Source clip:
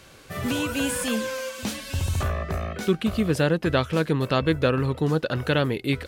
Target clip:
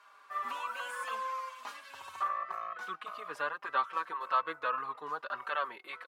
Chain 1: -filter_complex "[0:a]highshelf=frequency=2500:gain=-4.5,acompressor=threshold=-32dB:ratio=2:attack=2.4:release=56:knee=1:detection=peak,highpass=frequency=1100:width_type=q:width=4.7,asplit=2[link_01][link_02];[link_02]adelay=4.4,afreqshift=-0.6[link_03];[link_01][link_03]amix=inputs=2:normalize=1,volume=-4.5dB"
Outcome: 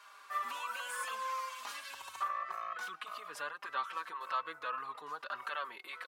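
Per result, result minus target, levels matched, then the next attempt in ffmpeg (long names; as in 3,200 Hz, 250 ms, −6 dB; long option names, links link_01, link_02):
downward compressor: peak gain reduction +9.5 dB; 4,000 Hz band +5.0 dB
-filter_complex "[0:a]highpass=frequency=1100:width_type=q:width=4.7,highshelf=frequency=2500:gain=-4.5,asplit=2[link_01][link_02];[link_02]adelay=4.4,afreqshift=-0.6[link_03];[link_01][link_03]amix=inputs=2:normalize=1,volume=-4.5dB"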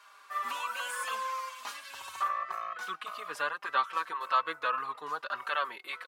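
4,000 Hz band +4.5 dB
-filter_complex "[0:a]highpass=frequency=1100:width_type=q:width=4.7,highshelf=frequency=2500:gain=-15,asplit=2[link_01][link_02];[link_02]adelay=4.4,afreqshift=-0.6[link_03];[link_01][link_03]amix=inputs=2:normalize=1,volume=-4.5dB"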